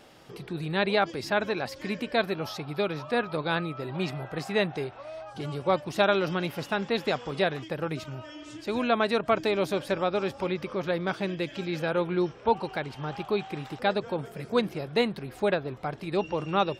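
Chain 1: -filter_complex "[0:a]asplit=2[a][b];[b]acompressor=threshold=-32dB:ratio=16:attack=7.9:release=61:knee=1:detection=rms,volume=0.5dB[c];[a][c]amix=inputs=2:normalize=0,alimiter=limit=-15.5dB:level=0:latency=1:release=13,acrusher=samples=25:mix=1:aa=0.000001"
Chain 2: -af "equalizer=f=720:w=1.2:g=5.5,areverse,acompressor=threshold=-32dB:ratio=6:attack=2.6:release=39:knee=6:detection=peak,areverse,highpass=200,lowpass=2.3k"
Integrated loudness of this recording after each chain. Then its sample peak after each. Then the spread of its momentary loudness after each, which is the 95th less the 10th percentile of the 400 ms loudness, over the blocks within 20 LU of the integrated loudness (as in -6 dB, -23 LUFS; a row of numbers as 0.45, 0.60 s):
-27.5, -37.5 LUFS; -15.5, -23.0 dBFS; 5, 4 LU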